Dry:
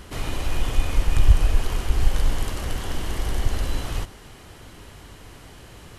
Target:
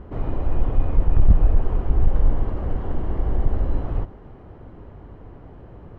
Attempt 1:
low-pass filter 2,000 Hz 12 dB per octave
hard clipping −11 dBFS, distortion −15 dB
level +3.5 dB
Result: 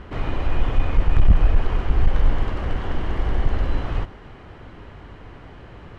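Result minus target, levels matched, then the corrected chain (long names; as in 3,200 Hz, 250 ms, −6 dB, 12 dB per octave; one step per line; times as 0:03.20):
2,000 Hz band +11.5 dB
low-pass filter 790 Hz 12 dB per octave
hard clipping −11 dBFS, distortion −15 dB
level +3.5 dB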